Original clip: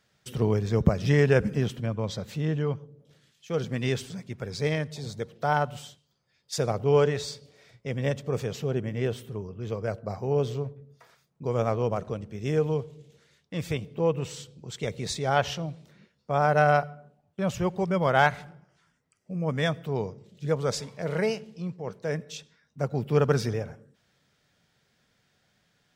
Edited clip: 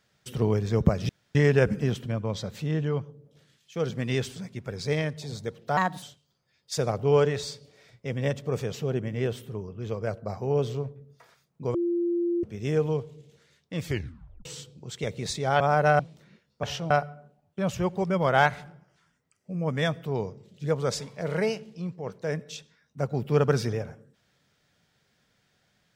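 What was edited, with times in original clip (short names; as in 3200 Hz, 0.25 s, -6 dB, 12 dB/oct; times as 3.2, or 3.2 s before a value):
1.09 insert room tone 0.26 s
5.51–5.83 speed 126%
11.55–12.24 bleep 345 Hz -23 dBFS
13.66 tape stop 0.60 s
15.41–15.68 swap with 16.32–16.71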